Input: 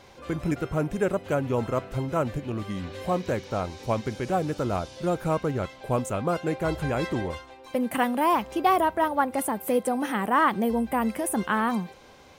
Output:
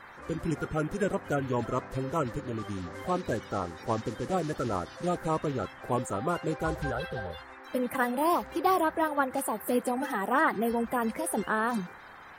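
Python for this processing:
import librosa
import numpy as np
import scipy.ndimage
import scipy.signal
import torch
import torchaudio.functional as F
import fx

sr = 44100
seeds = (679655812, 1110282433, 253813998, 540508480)

y = fx.spec_quant(x, sr, step_db=30)
y = fx.fixed_phaser(y, sr, hz=1500.0, stages=8, at=(6.9, 7.37), fade=0.02)
y = fx.dmg_noise_band(y, sr, seeds[0], low_hz=720.0, high_hz=1900.0, level_db=-47.0)
y = y * 10.0 ** (-3.0 / 20.0)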